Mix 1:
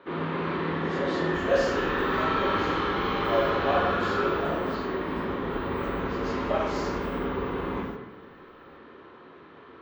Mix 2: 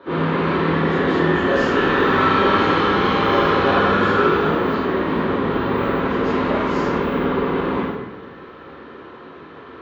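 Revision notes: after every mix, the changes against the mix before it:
first sound: send +11.0 dB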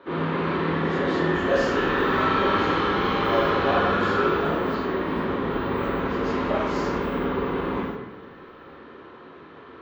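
first sound: send -6.0 dB

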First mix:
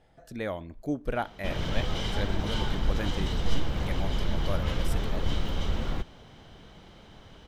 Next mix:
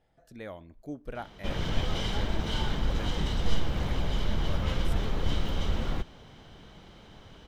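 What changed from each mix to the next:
speech -8.5 dB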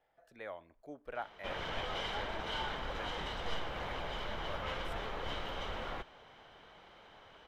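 master: add three-band isolator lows -17 dB, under 470 Hz, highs -12 dB, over 3 kHz

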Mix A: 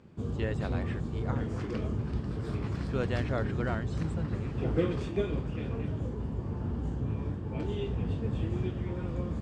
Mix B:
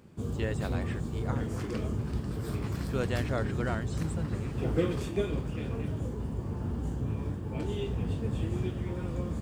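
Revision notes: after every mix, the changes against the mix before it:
master: remove distance through air 100 m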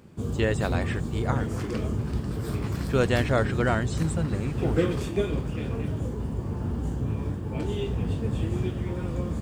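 speech +9.0 dB; background +4.0 dB

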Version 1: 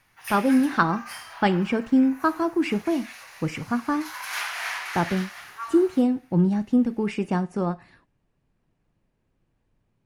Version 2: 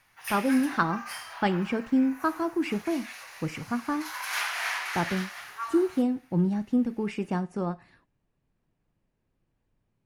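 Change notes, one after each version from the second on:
speech -4.5 dB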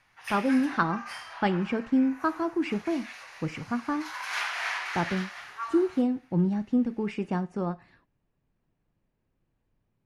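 master: add distance through air 62 m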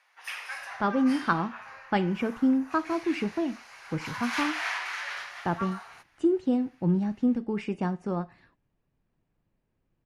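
speech: entry +0.50 s

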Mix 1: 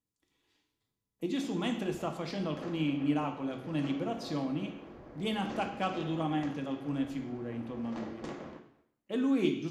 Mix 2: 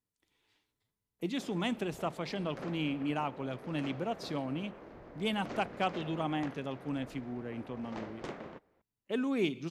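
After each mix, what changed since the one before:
reverb: off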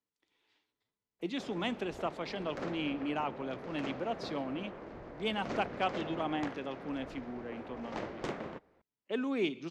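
speech: add three-band isolator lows -12 dB, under 210 Hz, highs -15 dB, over 6.5 kHz; background +4.0 dB

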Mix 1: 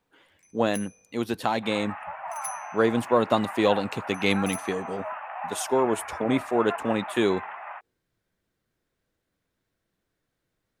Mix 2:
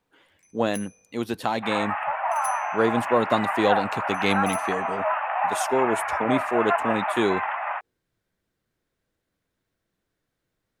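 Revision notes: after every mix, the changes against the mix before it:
second sound +10.0 dB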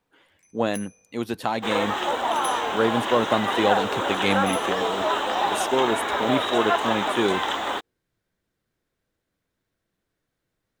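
second sound: remove Chebyshev band-pass 610–2600 Hz, order 5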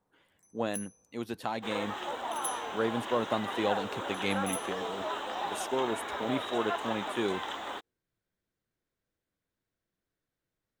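speech -8.5 dB; first sound: add Butterworth band-stop 3.1 kHz, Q 0.54; second sound -11.5 dB

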